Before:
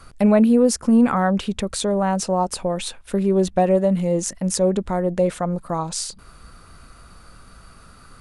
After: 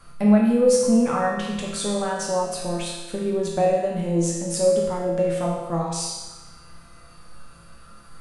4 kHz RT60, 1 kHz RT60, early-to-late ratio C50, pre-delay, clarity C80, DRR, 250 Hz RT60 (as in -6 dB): 1.1 s, 1.2 s, 1.0 dB, 6 ms, 3.5 dB, -3.5 dB, 1.3 s